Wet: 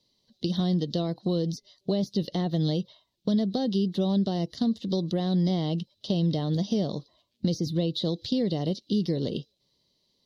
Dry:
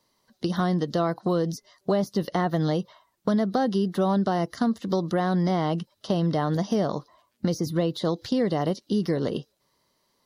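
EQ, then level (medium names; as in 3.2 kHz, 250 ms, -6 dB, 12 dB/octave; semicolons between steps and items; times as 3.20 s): FFT filter 180 Hz 0 dB, 540 Hz -5 dB, 1.4 kHz -20 dB, 3.8 kHz +6 dB, 9.2 kHz -12 dB; 0.0 dB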